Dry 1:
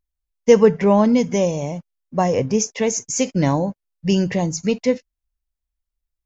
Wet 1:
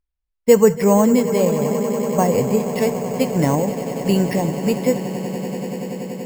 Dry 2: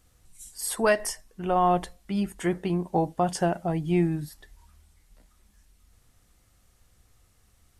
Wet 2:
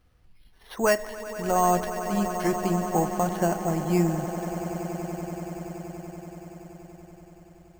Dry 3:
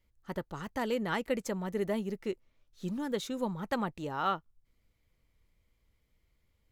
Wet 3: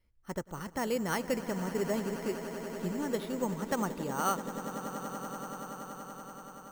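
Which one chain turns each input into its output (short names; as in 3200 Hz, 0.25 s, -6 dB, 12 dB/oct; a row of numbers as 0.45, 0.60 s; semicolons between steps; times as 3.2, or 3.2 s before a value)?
on a send: swelling echo 95 ms, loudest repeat 8, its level -16 dB; on the sum: careless resampling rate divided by 6×, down filtered, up hold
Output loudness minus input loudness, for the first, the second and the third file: +0.5, 0.0, 0.0 LU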